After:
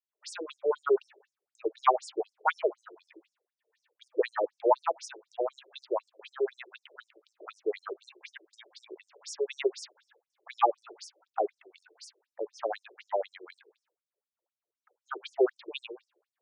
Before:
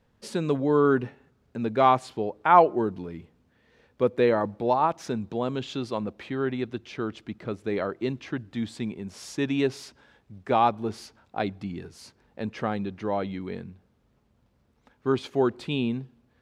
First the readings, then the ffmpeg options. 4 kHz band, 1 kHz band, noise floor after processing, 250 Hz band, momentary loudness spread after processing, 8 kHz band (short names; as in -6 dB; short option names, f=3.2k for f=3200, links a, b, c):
-5.5 dB, -6.5 dB, under -85 dBFS, -14.5 dB, 22 LU, -1.5 dB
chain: -af "agate=range=-33dB:threshold=-54dB:ratio=3:detection=peak,bandreject=f=56.16:t=h:w=4,bandreject=f=112.32:t=h:w=4,afftfilt=real='re*between(b*sr/1024,430*pow(7400/430,0.5+0.5*sin(2*PI*4*pts/sr))/1.41,430*pow(7400/430,0.5+0.5*sin(2*PI*4*pts/sr))*1.41)':imag='im*between(b*sr/1024,430*pow(7400/430,0.5+0.5*sin(2*PI*4*pts/sr))/1.41,430*pow(7400/430,0.5+0.5*sin(2*PI*4*pts/sr))*1.41)':win_size=1024:overlap=0.75,volume=2.5dB"